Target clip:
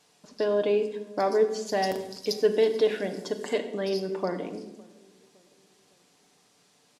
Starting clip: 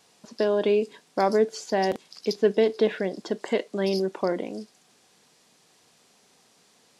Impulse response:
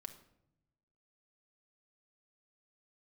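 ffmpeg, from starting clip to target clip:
-filter_complex "[0:a]asettb=1/sr,asplit=3[s0][s1][s2];[s0]atrim=end=1.664[s3];[s1]atrim=start=1.66:end=3.58,asetpts=PTS-STARTPTS,afade=t=in:d=0.004:c=qsin,afade=t=out:st=1.916:d=0.004:c=qsin,aemphasis=mode=production:type=50kf[s4];[s2]atrim=start=3.576[s5];[s3][s4]acrossfade=d=0.004:c1=hsin:c2=qsin[s6];[s6][s5]acrossfade=d=0.004:c1=qsin:c2=hsin,asplit=2[s7][s8];[s8]adelay=559,lowpass=f=910:p=1,volume=0.0631,asplit=2[s9][s10];[s10]adelay=559,lowpass=f=910:p=1,volume=0.51,asplit=2[s11][s12];[s12]adelay=559,lowpass=f=910:p=1,volume=0.51[s13];[s7][s9][s11][s13]amix=inputs=4:normalize=0[s14];[1:a]atrim=start_sample=2205,afade=t=out:st=0.35:d=0.01,atrim=end_sample=15876,asetrate=30870,aresample=44100[s15];[s14][s15]afir=irnorm=-1:irlink=0"

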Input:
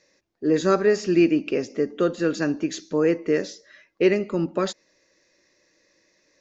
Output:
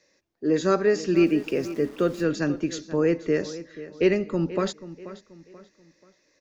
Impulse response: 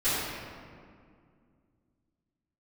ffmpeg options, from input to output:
-filter_complex "[0:a]acrossover=split=110|1500[s0][s1][s2];[s0]dynaudnorm=f=310:g=9:m=3.98[s3];[s3][s1][s2]amix=inputs=3:normalize=0,asettb=1/sr,asplit=3[s4][s5][s6];[s4]atrim=end=1.164[s7];[s5]atrim=start=1.16:end=2.24,asetpts=PTS-STARTPTS,afade=t=in:d=0.004:c=qsin,afade=t=out:st=1.076:d=0.004:c=qsin,aeval=exprs='val(0)*gte(abs(val(0)),0.00841)':c=same[s8];[s6]atrim=start=2.236[s9];[s7][s8]acrossfade=d=0.004:c1=hsin:c2=qsin[s10];[s10][s9]acrossfade=d=0.004:c1=qsin:c2=hsin,asplit=2[s11][s12];[s12]adelay=484,lowpass=f=4100:p=1,volume=0.178,asplit=2[s13][s14];[s14]adelay=484,lowpass=f=4100:p=1,volume=0.38,asplit=2[s15][s16];[s16]adelay=484,lowpass=f=4100:p=1,volume=0.38[s17];[s11][s13][s15][s17]amix=inputs=4:normalize=0,volume=0.794"

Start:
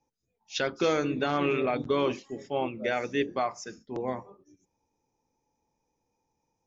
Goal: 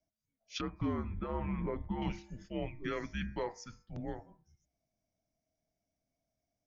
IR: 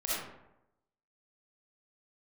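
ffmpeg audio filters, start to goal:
-filter_complex "[0:a]asettb=1/sr,asplit=3[s0][s1][s2];[s0]atrim=end=0.614[s3];[s1]atrim=start=0.61:end=2.02,asetpts=PTS-STARTPTS,afade=t=in:d=0.004:c=qsin,afade=t=out:st=1.406:d=0.004:c=qsin,lowpass=1400[s4];[s2]atrim=start=2.016[s5];[s3][s4]acrossfade=d=0.004:c1=hsin:c2=qsin[s6];[s6][s5]acrossfade=d=0.004:c1=qsin:c2=hsin,bandreject=f=141:t=h:w=4,bandreject=f=282:t=h:w=4,bandreject=f=423:t=h:w=4,bandreject=f=564:t=h:w=4,bandreject=f=705:t=h:w=4,bandreject=f=846:t=h:w=4,bandreject=f=987:t=h:w=4,bandreject=f=1128:t=h:w=4,bandreject=f=1269:t=h:w=4,bandreject=f=1410:t=h:w=4,bandreject=f=1551:t=h:w=4,bandreject=f=1692:t=h:w=4,bandreject=f=1833:t=h:w=4,bandreject=f=1974:t=h:w=4,bandreject=f=2115:t=h:w=4,bandreject=f=2256:t=h:w=4,bandreject=f=2397:t=h:w=4,bandreject=f=2538:t=h:w=4,bandreject=f=2679:t=h:w=4,afreqshift=-220,volume=0.398"

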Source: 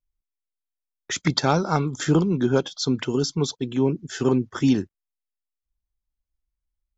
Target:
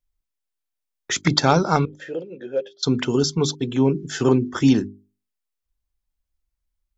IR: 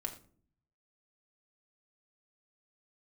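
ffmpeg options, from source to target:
-filter_complex "[0:a]asettb=1/sr,asplit=3[s0][s1][s2];[s0]atrim=end=1.854[s3];[s1]atrim=start=1.85:end=2.83,asetpts=PTS-STARTPTS,afade=t=in:d=0.004:c=qsin,afade=t=out:st=0.976:d=0.004:c=qsin,asplit=3[s4][s5][s6];[s4]bandpass=f=530:t=q:w=8,volume=1[s7];[s5]bandpass=f=1840:t=q:w=8,volume=0.501[s8];[s6]bandpass=f=2480:t=q:w=8,volume=0.355[s9];[s7][s8][s9]amix=inputs=3:normalize=0[s10];[s2]atrim=start=2.826[s11];[s3][s10]acrossfade=d=0.004:c1=hsin:c2=qsin[s12];[s12][s11]acrossfade=d=0.004:c1=qsin:c2=hsin,bandreject=f=50:t=h:w=6,bandreject=f=100:t=h:w=6,bandreject=f=150:t=h:w=6,bandreject=f=200:t=h:w=6,bandreject=f=250:t=h:w=6,bandreject=f=300:t=h:w=6,bandreject=f=350:t=h:w=6,bandreject=f=400:t=h:w=6,volume=1.58"

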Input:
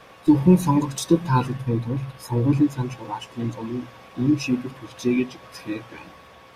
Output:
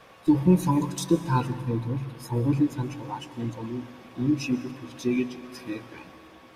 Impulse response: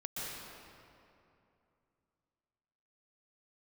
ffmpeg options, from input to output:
-filter_complex "[0:a]asplit=2[s0][s1];[1:a]atrim=start_sample=2205,highshelf=f=9900:g=11[s2];[s1][s2]afir=irnorm=-1:irlink=0,volume=0.168[s3];[s0][s3]amix=inputs=2:normalize=0,volume=0.562"

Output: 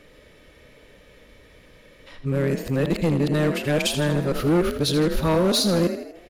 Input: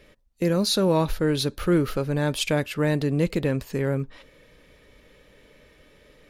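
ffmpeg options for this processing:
-filter_complex "[0:a]areverse,asplit=7[s0][s1][s2][s3][s4][s5][s6];[s1]adelay=80,afreqshift=36,volume=0.299[s7];[s2]adelay=160,afreqshift=72,volume=0.153[s8];[s3]adelay=240,afreqshift=108,volume=0.0776[s9];[s4]adelay=320,afreqshift=144,volume=0.0398[s10];[s5]adelay=400,afreqshift=180,volume=0.0202[s11];[s6]adelay=480,afreqshift=216,volume=0.0104[s12];[s0][s7][s8][s9][s10][s11][s12]amix=inputs=7:normalize=0,volume=8.41,asoftclip=hard,volume=0.119,volume=1.41"

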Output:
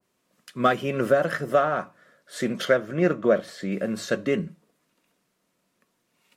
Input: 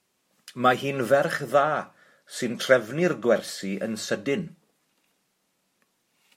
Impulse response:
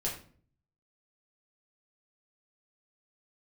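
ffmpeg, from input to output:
-filter_complex "[0:a]asettb=1/sr,asplit=3[s0][s1][s2];[s0]atrim=end=2.654[s3];[s1]atrim=start=2.65:end=3.72,asetpts=PTS-STARTPTS,afade=t=in:d=0.004:c=qsin,afade=t=out:st=1.066:d=0.004:c=qsin,highshelf=f=5700:g=-8.5[s4];[s2]atrim=start=3.716[s5];[s3][s4]acrossfade=d=0.004:c1=hsin:c2=qsin[s6];[s6][s5]acrossfade=d=0.004:c1=qsin:c2=hsin,asplit=2[s7][s8];[s8]adynamicsmooth=sensitivity=2.5:basefreq=2600,volume=0.708[s9];[s7][s9]amix=inputs=2:normalize=0,alimiter=limit=0.501:level=0:latency=1:release=295,asuperstop=centerf=810:order=4:qfactor=8,adynamicequalizer=threshold=0.0251:dfrequency=1600:dqfactor=0.7:tfrequency=1600:tqfactor=0.7:attack=5:release=100:ratio=0.375:range=1.5:mode=cutabove:tftype=highshelf,volume=0.75"

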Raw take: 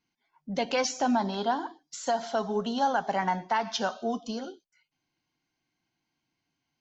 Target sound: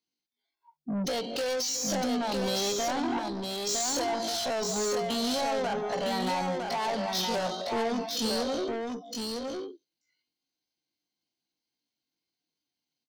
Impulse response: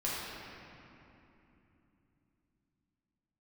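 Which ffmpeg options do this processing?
-af "aemphasis=mode=production:type=75kf,afftdn=nr=23:nf=-47,equalizer=f=250:t=o:w=1:g=6,equalizer=f=500:t=o:w=1:g=12,equalizer=f=4000:t=o:w=1:g=11,alimiter=limit=0.251:level=0:latency=1:release=137,acompressor=threshold=0.0631:ratio=8,atempo=0.52,acontrast=79,asoftclip=type=tanh:threshold=0.0531,aecho=1:1:958:0.631,volume=0.75"

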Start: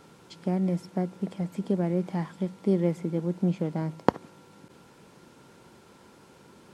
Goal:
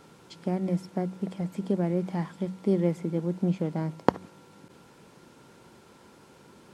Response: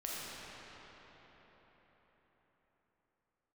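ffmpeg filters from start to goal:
-af "bandreject=f=93.06:t=h:w=4,bandreject=f=186.12:t=h:w=4"

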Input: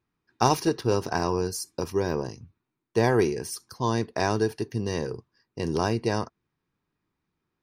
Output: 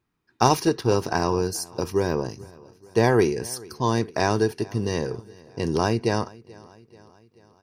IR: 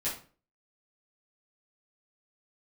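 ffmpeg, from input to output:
-af "aecho=1:1:435|870|1305|1740:0.0708|0.0404|0.023|0.0131,volume=1.41"

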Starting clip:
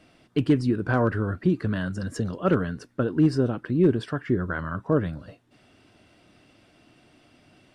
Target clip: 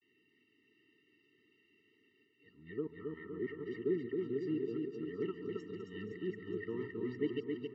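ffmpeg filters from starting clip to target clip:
-filter_complex "[0:a]areverse,asplit=2[s0][s1];[s1]aecho=0:1:139:0.106[s2];[s0][s2]amix=inputs=2:normalize=0,aresample=16000,aresample=44100,asplit=3[s3][s4][s5];[s3]bandpass=f=530:t=q:w=8,volume=1[s6];[s4]bandpass=f=1840:t=q:w=8,volume=0.501[s7];[s5]bandpass=f=2480:t=q:w=8,volume=0.355[s8];[s6][s7][s8]amix=inputs=3:normalize=0,asplit=2[s9][s10];[s10]aecho=0:1:270|513|731.7|928.5|1106:0.631|0.398|0.251|0.158|0.1[s11];[s9][s11]amix=inputs=2:normalize=0,afftfilt=real='re*eq(mod(floor(b*sr/1024/450),2),0)':imag='im*eq(mod(floor(b*sr/1024/450),2),0)':win_size=1024:overlap=0.75,volume=1.26"

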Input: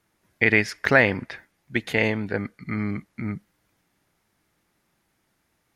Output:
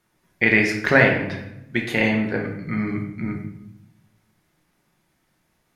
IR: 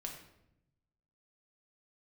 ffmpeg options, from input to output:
-filter_complex "[1:a]atrim=start_sample=2205[s0];[0:a][s0]afir=irnorm=-1:irlink=0,volume=1.68"

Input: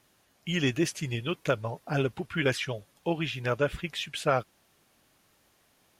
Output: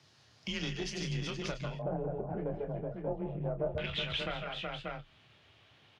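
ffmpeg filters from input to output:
-filter_complex "[0:a]highpass=61,lowshelf=f=130:t=q:w=1.5:g=9.5,aecho=1:1:144|149|185|372|586:0.266|0.376|0.15|0.376|0.355,acompressor=threshold=0.0141:ratio=4,aeval=exprs='(tanh(39.8*val(0)+0.7)-tanh(0.7))/39.8':c=same,asetnsamples=n=441:p=0,asendcmd='1.79 lowpass f 630;3.78 lowpass f 3200',lowpass=f=4900:t=q:w=2.5,afreqshift=25,asplit=2[s0][s1];[s1]adelay=28,volume=0.355[s2];[s0][s2]amix=inputs=2:normalize=0,volume=1.5"

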